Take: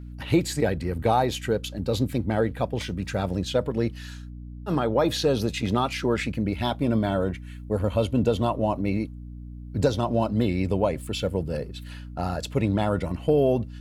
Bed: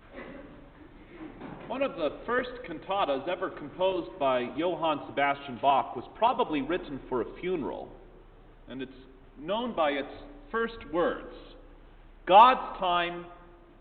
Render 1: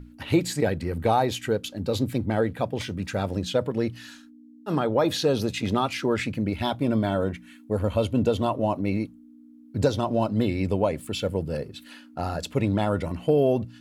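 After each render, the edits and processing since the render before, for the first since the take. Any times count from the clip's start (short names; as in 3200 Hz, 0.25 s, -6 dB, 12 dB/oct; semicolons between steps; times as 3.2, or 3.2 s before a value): notches 60/120/180 Hz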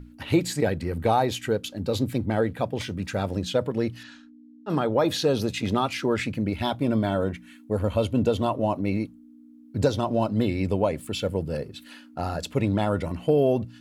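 4.03–4.7 air absorption 120 m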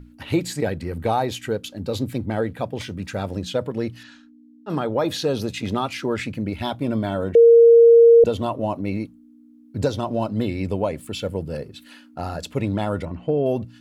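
7.35–8.24 bleep 465 Hz -7 dBFS; 13.05–13.46 tape spacing loss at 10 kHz 24 dB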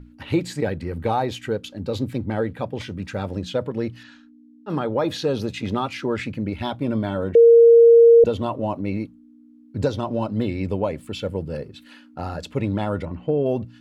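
high shelf 6900 Hz -11 dB; notch 680 Hz, Q 12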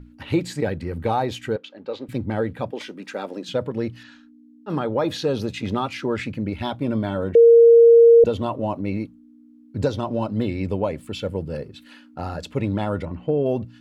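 1.56–2.09 BPF 440–3000 Hz; 2.71–3.49 HPF 250 Hz 24 dB/oct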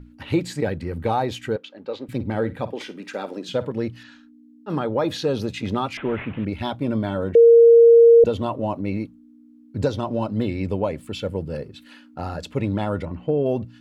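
2.14–3.72 flutter echo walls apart 9.1 m, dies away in 0.21 s; 5.97–6.45 delta modulation 16 kbps, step -34 dBFS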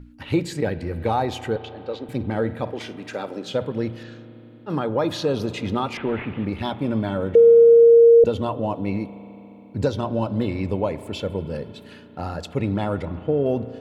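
spring tank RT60 3.7 s, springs 35 ms, chirp 45 ms, DRR 13.5 dB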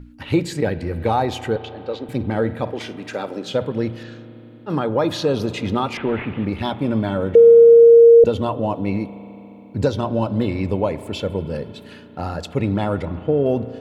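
gain +3 dB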